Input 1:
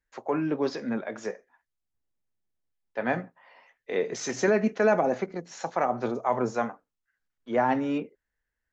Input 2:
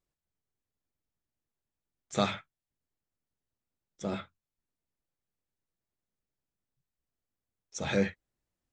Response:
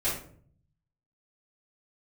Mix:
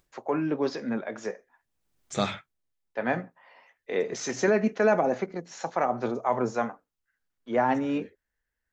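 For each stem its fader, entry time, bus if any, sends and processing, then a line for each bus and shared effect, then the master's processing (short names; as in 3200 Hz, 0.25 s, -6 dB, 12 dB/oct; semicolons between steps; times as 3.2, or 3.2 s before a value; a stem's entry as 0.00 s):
0.0 dB, 0.00 s, no send, dry
+1.0 dB, 0.00 s, no send, expander -51 dBFS; upward compressor, threshold -37 dBFS; auto duck -22 dB, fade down 0.25 s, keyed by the first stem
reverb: off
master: dry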